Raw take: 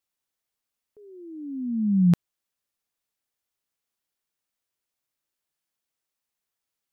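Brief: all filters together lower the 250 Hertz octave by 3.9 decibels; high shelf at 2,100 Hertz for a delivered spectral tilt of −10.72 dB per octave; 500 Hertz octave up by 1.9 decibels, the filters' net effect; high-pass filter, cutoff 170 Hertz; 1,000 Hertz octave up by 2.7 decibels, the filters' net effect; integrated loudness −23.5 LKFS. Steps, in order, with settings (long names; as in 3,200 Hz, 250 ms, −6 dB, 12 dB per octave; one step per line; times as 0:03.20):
high-pass filter 170 Hz
parametric band 250 Hz −3.5 dB
parametric band 500 Hz +4.5 dB
parametric band 1,000 Hz +4 dB
high-shelf EQ 2,100 Hz −8.5 dB
level +4.5 dB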